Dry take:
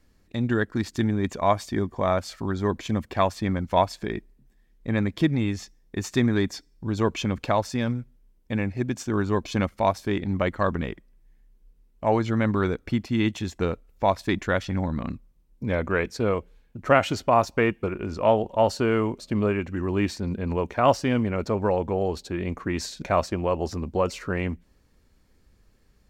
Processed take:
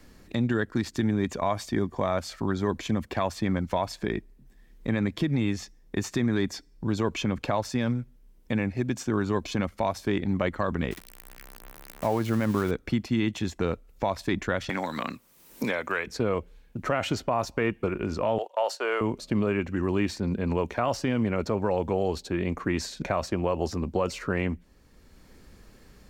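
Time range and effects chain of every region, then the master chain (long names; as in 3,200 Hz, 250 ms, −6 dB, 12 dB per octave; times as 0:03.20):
0:10.91–0:12.71: spike at every zero crossing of −22 dBFS + de-essing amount 30% + high-shelf EQ 4,100 Hz −11.5 dB
0:14.69–0:16.07: high-pass filter 390 Hz 6 dB per octave + spectral tilt +3 dB per octave + multiband upward and downward compressor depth 100%
0:18.38–0:19.01: noise gate −35 dBFS, range −11 dB + high-pass filter 500 Hz 24 dB per octave
whole clip: parametric band 97 Hz −3.5 dB 0.25 octaves; brickwall limiter −16 dBFS; multiband upward and downward compressor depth 40%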